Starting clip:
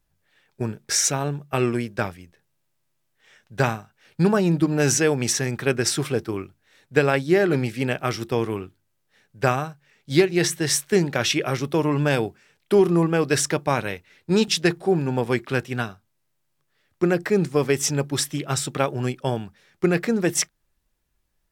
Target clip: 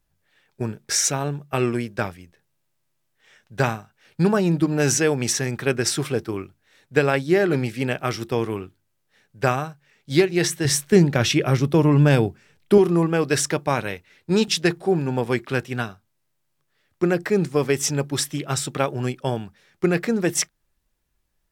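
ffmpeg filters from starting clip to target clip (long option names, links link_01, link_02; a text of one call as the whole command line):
ffmpeg -i in.wav -filter_complex "[0:a]asettb=1/sr,asplit=3[link_01][link_02][link_03];[link_01]atrim=end=10.654[link_04];[link_02]atrim=start=10.65:end=12.78,asetpts=PTS-STARTPTS,afade=type=in:duration=0.004:curve=qsin,afade=type=out:start_time=2.126:duration=0.004:curve=qsin,lowshelf=frequency=250:gain=11[link_05];[link_03]atrim=start=12.776[link_06];[link_04][link_05]acrossfade=duration=0.004:curve1=hsin:curve2=qsin[link_07];[link_07][link_06]acrossfade=duration=0.004:curve1=qsin:curve2=hsin" out.wav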